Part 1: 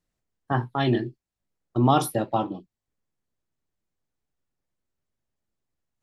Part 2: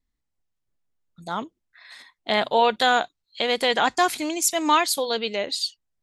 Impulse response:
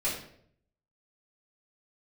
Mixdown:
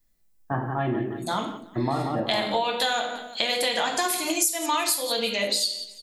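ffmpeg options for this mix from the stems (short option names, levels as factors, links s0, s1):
-filter_complex "[0:a]lowpass=f=2300:w=0.5412,lowpass=f=2300:w=1.3066,volume=0.596,asplit=3[s0][s1][s2];[s1]volume=0.531[s3];[s2]volume=0.562[s4];[1:a]aemphasis=mode=production:type=75kf,volume=0.708,asplit=3[s5][s6][s7];[s6]volume=0.631[s8];[s7]volume=0.168[s9];[2:a]atrim=start_sample=2205[s10];[s3][s8]amix=inputs=2:normalize=0[s11];[s11][s10]afir=irnorm=-1:irlink=0[s12];[s4][s9]amix=inputs=2:normalize=0,aecho=0:1:177|354|531|708|885:1|0.36|0.13|0.0467|0.0168[s13];[s0][s5][s12][s13]amix=inputs=4:normalize=0,acompressor=threshold=0.0794:ratio=6"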